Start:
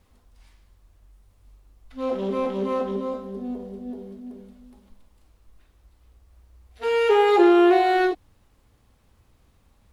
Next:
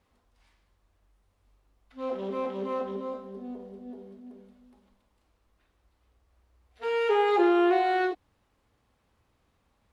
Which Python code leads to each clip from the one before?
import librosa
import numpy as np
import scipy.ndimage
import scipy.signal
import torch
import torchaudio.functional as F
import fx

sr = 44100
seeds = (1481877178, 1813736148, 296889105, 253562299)

y = fx.highpass(x, sr, hz=1400.0, slope=6)
y = fx.tilt_eq(y, sr, slope=-3.5)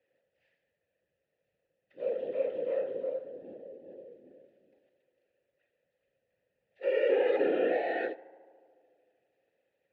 y = fx.whisperise(x, sr, seeds[0])
y = fx.vowel_filter(y, sr, vowel='e')
y = fx.echo_tape(y, sr, ms=74, feedback_pct=88, wet_db=-19.5, lp_hz=2200.0, drive_db=27.0, wow_cents=21)
y = y * 10.0 ** (6.0 / 20.0)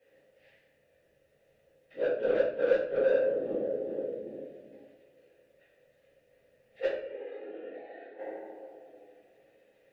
y = fx.gate_flip(x, sr, shuts_db=-24.0, range_db=-30)
y = 10.0 ** (-35.5 / 20.0) * np.tanh(y / 10.0 ** (-35.5 / 20.0))
y = fx.room_shoebox(y, sr, seeds[1], volume_m3=79.0, walls='mixed', distance_m=1.7)
y = y * 10.0 ** (5.0 / 20.0)